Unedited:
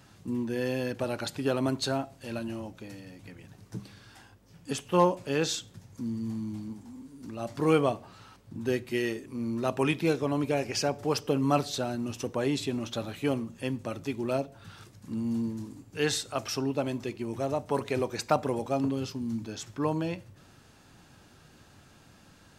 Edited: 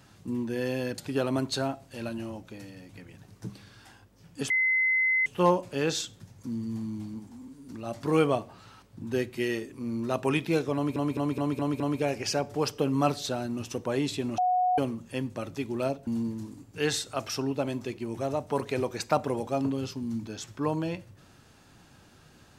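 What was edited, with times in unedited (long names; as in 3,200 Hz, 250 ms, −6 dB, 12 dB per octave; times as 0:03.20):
0:00.98–0:01.28: remove
0:04.80: insert tone 2,050 Hz −21.5 dBFS 0.76 s
0:10.29: stutter 0.21 s, 6 plays
0:12.87–0:13.27: beep over 731 Hz −21.5 dBFS
0:14.56–0:15.26: remove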